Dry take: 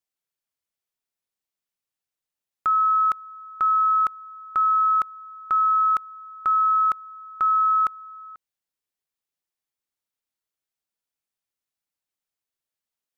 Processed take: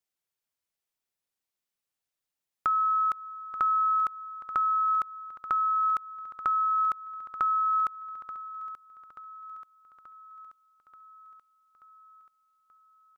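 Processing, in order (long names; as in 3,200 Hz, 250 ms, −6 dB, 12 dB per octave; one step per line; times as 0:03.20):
downward compressor, threshold −24 dBFS, peak gain reduction 6 dB
repeating echo 882 ms, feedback 59%, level −14 dB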